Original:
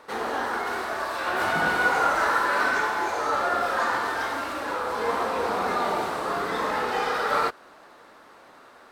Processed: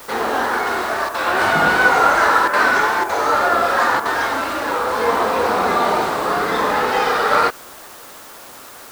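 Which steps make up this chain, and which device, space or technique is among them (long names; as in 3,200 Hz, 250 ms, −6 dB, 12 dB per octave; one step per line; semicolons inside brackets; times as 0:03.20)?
worn cassette (low-pass filter 9,800 Hz; tape wow and flutter; tape dropouts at 0:01.09/0:02.48/0:03.04/0:04.00, 52 ms −6 dB; white noise bed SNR 23 dB)
level +8.5 dB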